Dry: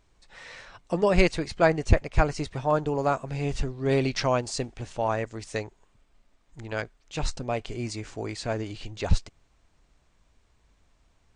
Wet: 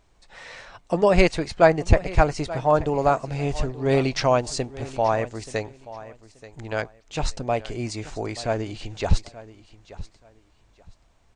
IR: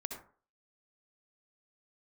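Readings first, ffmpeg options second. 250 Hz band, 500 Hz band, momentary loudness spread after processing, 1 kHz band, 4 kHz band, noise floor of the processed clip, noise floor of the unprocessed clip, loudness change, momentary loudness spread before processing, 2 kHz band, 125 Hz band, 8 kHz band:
+3.0 dB, +5.0 dB, 22 LU, +5.5 dB, +2.5 dB, -60 dBFS, -66 dBFS, +4.0 dB, 12 LU, +3.0 dB, +2.5 dB, +2.5 dB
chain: -af "equalizer=f=710:t=o:w=0.84:g=4,aecho=1:1:880|1760:0.141|0.0325,volume=2.5dB"

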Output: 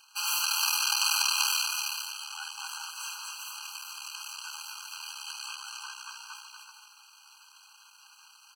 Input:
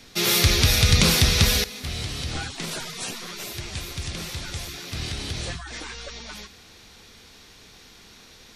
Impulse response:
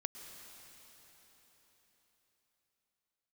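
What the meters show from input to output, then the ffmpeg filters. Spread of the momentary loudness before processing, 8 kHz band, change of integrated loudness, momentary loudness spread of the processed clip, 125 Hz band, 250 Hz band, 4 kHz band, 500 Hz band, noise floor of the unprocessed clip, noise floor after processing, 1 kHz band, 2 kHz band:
18 LU, -3.5 dB, -7.0 dB, 18 LU, under -40 dB, under -40 dB, -6.5 dB, under -40 dB, -50 dBFS, -57 dBFS, -2.0 dB, -6.5 dB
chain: -af "aecho=1:1:240|384|470.4|522.2|553.3:0.631|0.398|0.251|0.158|0.1,aeval=exprs='max(val(0),0)':c=same,afftfilt=real='re*eq(mod(floor(b*sr/1024/810),2),1)':imag='im*eq(mod(floor(b*sr/1024/810),2),1)':win_size=1024:overlap=0.75"

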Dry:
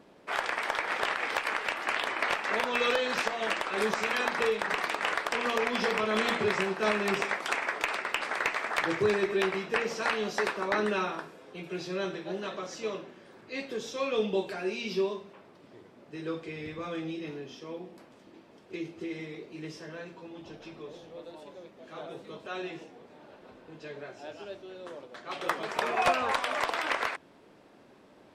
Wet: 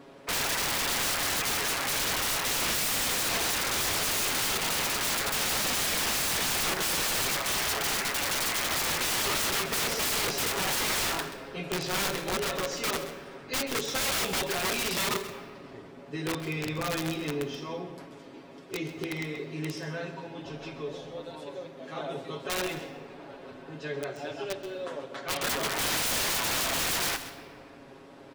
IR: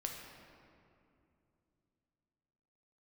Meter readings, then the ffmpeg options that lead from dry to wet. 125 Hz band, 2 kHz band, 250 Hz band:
+6.5 dB, -0.5 dB, 0.0 dB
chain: -filter_complex "[0:a]aecho=1:1:7.3:0.79,aeval=exprs='(mod(26.6*val(0)+1,2)-1)/26.6':c=same,asplit=2[a][b];[1:a]atrim=start_sample=2205,adelay=131[c];[b][c]afir=irnorm=-1:irlink=0,volume=-10dB[d];[a][d]amix=inputs=2:normalize=0,volume=4.5dB"

